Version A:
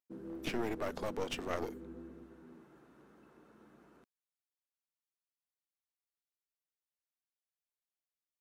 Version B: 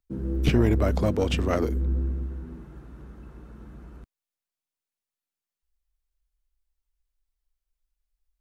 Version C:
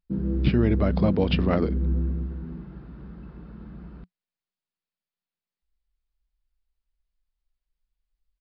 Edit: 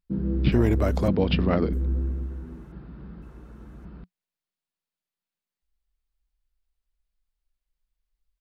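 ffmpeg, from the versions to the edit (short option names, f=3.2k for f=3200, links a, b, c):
-filter_complex "[1:a]asplit=3[a][b][c];[2:a]asplit=4[d][e][f][g];[d]atrim=end=0.522[h];[a]atrim=start=0.518:end=1.082[i];[e]atrim=start=1.078:end=1.732[j];[b]atrim=start=1.728:end=2.722[k];[f]atrim=start=2.718:end=3.222[l];[c]atrim=start=3.218:end=3.852[m];[g]atrim=start=3.848[n];[h][i]acrossfade=d=0.004:c1=hsin:c2=hsin[o];[o][j]acrossfade=d=0.004:c1=hsin:c2=hsin[p];[p][k]acrossfade=d=0.004:c1=hsin:c2=hsin[q];[q][l]acrossfade=d=0.004:c1=hsin:c2=hsin[r];[r][m]acrossfade=d=0.004:c1=hsin:c2=hsin[s];[s][n]acrossfade=d=0.004:c1=hsin:c2=hsin"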